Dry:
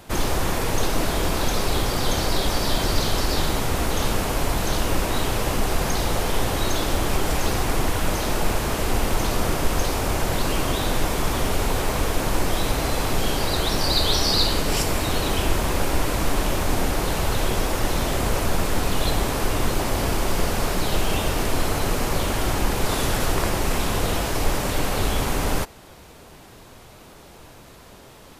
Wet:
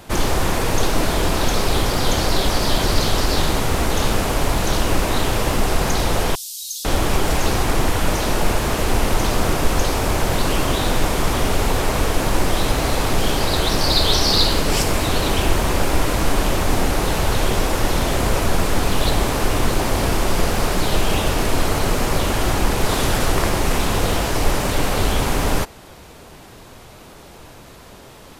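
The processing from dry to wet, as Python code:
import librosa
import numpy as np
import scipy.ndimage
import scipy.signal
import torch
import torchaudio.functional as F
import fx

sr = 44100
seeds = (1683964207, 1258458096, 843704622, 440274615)

y = fx.cheby2_highpass(x, sr, hz=1800.0, order=4, stop_db=50, at=(6.35, 6.85))
y = fx.doppler_dist(y, sr, depth_ms=0.26)
y = F.gain(torch.from_numpy(y), 4.0).numpy()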